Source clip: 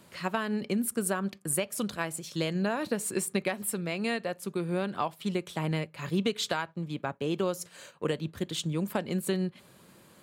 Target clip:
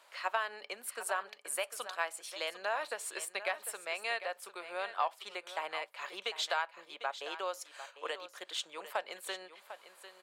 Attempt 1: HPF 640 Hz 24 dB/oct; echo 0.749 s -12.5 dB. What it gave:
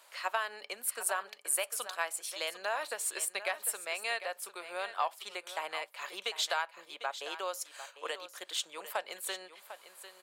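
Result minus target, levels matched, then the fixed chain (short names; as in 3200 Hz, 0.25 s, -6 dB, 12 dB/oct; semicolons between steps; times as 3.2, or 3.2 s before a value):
8000 Hz band +5.0 dB
HPF 640 Hz 24 dB/oct; high shelf 6800 Hz -11.5 dB; echo 0.749 s -12.5 dB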